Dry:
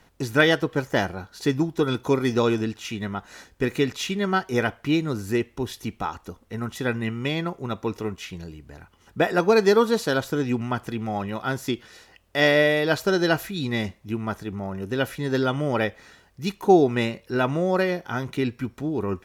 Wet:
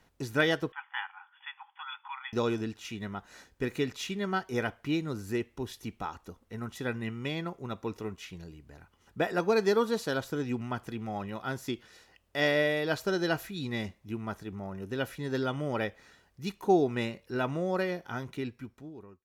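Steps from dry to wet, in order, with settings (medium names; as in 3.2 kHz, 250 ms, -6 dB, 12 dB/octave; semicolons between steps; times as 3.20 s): fade out at the end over 1.13 s; 0.72–2.33 s: brick-wall FIR band-pass 770–3500 Hz; trim -8 dB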